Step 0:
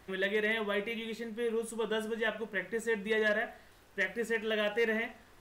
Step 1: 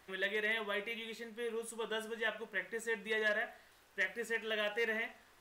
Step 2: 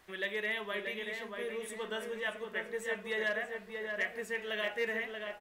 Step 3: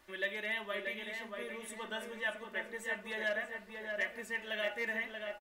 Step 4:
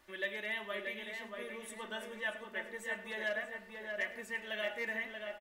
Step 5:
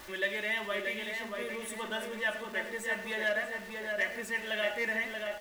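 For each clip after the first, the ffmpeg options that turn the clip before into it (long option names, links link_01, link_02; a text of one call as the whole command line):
ffmpeg -i in.wav -af "lowshelf=frequency=430:gain=-10.5,volume=-2dB" out.wav
ffmpeg -i in.wav -filter_complex "[0:a]asplit=2[link_01][link_02];[link_02]adelay=632,lowpass=frequency=2200:poles=1,volume=-4dB,asplit=2[link_03][link_04];[link_04]adelay=632,lowpass=frequency=2200:poles=1,volume=0.46,asplit=2[link_05][link_06];[link_06]adelay=632,lowpass=frequency=2200:poles=1,volume=0.46,asplit=2[link_07][link_08];[link_08]adelay=632,lowpass=frequency=2200:poles=1,volume=0.46,asplit=2[link_09][link_10];[link_10]adelay=632,lowpass=frequency=2200:poles=1,volume=0.46,asplit=2[link_11][link_12];[link_12]adelay=632,lowpass=frequency=2200:poles=1,volume=0.46[link_13];[link_01][link_03][link_05][link_07][link_09][link_11][link_13]amix=inputs=7:normalize=0" out.wav
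ffmpeg -i in.wav -af "aecho=1:1:3.4:0.59,volume=-2.5dB" out.wav
ffmpeg -i in.wav -af "aecho=1:1:104:0.158,volume=-1.5dB" out.wav
ffmpeg -i in.wav -af "aeval=exprs='val(0)+0.5*0.00316*sgn(val(0))':channel_layout=same,volume=5dB" out.wav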